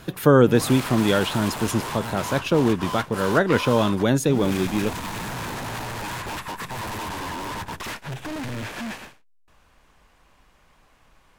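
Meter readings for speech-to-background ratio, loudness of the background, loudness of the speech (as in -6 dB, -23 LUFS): 10.0 dB, -31.5 LUFS, -21.5 LUFS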